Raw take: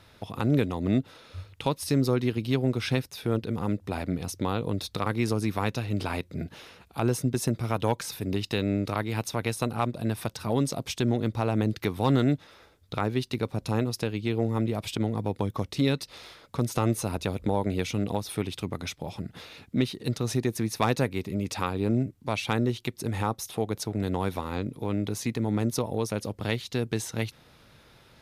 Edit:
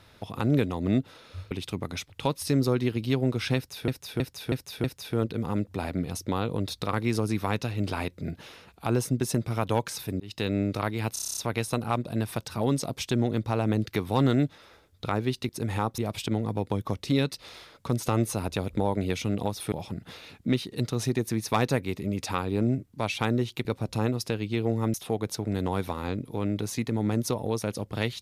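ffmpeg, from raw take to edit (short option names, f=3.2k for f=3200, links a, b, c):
-filter_complex "[0:a]asplit=21[a][b][c][d][e][f][g][h][i][j][k][l][m][n][o][p][q][r][s][t][u];[a]atrim=end=1.512[v];[b]atrim=start=18.408:end=19.002[w];[c]atrim=start=1.508:end=3.292[x];[d]atrim=start=2.968:end=3.292[y];[e]atrim=start=2.968:end=3.292[z];[f]atrim=start=2.968:end=3.292[aa];[g]atrim=start=2.968:end=8.33,asetpts=PTS-STARTPTS,afade=t=out:st=5.358:d=0.004:c=hsin[ab];[h]atrim=start=8.33:end=9.292,asetpts=PTS-STARTPTS,afade=t=in:d=0.37:c=qsin[ac];[i]atrim=start=9.258:end=9.292[ad];[j]atrim=start=9.258:end=9.292[ae];[k]atrim=start=9.258:end=9.292[af];[l]atrim=start=9.258:end=9.292[ag];[m]atrim=start=9.258:end=9.292[ah];[n]atrim=start=9.258:end=9.292[ai];[o]atrim=start=9.258:end=9.292[aj];[p]atrim=start=9.258:end=13.382[ak];[q]atrim=start=22.928:end=23.422[al];[r]atrim=start=14.668:end=18.412[am];[s]atrim=start=18.998:end=22.932[an];[t]atrim=start=13.378:end=14.672[ao];[u]atrim=start=23.418[ap];[v][w]acrossfade=d=0.004:c1=hsin:c2=hsin[aq];[aq][x]acrossfade=d=0.004:c1=hsin:c2=hsin[ar];[ar][y]acrossfade=d=0.004:c1=hsin:c2=hsin[as];[as][z]acrossfade=d=0.004:c1=hsin:c2=hsin[at];[at][aa]acrossfade=d=0.004:c1=hsin:c2=hsin[au];[ab][ac]concat=n=2:v=0:a=1[av];[au][av]acrossfade=d=0.004:c1=hsin:c2=hsin[aw];[aw][ad]acrossfade=d=0.004:c1=hsin:c2=hsin[ax];[ax][ae]acrossfade=d=0.004:c1=hsin:c2=hsin[ay];[ay][af]acrossfade=d=0.004:c1=hsin:c2=hsin[az];[az][ag]acrossfade=d=0.004:c1=hsin:c2=hsin[ba];[ba][ah]acrossfade=d=0.004:c1=hsin:c2=hsin[bb];[bb][ai]acrossfade=d=0.004:c1=hsin:c2=hsin[bc];[bc][aj]acrossfade=d=0.004:c1=hsin:c2=hsin[bd];[bd][ak]acrossfade=d=0.004:c1=hsin:c2=hsin[be];[be][al]acrossfade=d=0.004:c1=hsin:c2=hsin[bf];[bf][am]acrossfade=d=0.004:c1=hsin:c2=hsin[bg];[bg][an]acrossfade=d=0.004:c1=hsin:c2=hsin[bh];[bh][ao]acrossfade=d=0.004:c1=hsin:c2=hsin[bi];[bi][ap]acrossfade=d=0.004:c1=hsin:c2=hsin"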